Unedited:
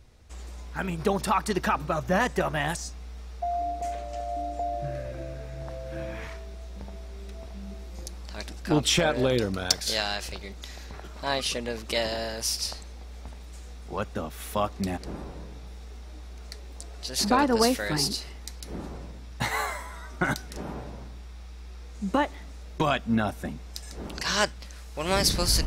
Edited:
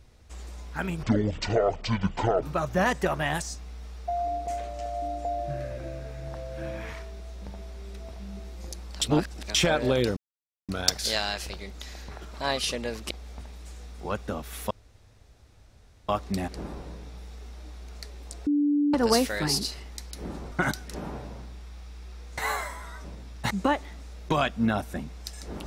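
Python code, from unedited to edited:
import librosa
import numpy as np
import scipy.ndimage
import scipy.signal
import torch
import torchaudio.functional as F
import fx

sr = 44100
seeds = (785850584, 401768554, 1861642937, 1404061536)

y = fx.edit(x, sr, fx.speed_span(start_s=1.03, length_s=0.74, speed=0.53),
    fx.reverse_span(start_s=8.36, length_s=0.53),
    fx.insert_silence(at_s=9.51, length_s=0.52),
    fx.cut(start_s=11.93, length_s=1.05),
    fx.insert_room_tone(at_s=14.58, length_s=1.38),
    fx.bleep(start_s=16.96, length_s=0.47, hz=291.0, db=-20.0),
    fx.swap(start_s=19.01, length_s=0.46, other_s=20.14, other_length_s=1.86), tone=tone)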